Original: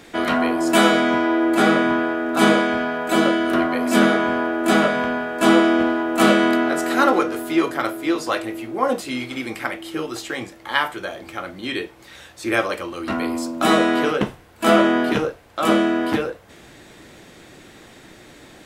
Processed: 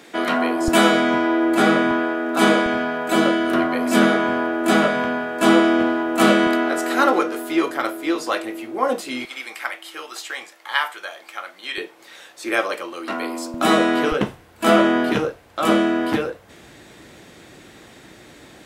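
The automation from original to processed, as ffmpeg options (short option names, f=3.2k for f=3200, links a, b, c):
-af "asetnsamples=n=441:p=0,asendcmd='0.68 highpass f 68;1.91 highpass f 180;2.66 highpass f 78;6.47 highpass f 240;9.25 highpass f 830;11.78 highpass f 340;13.54 highpass f 120;14.12 highpass f 41',highpass=210"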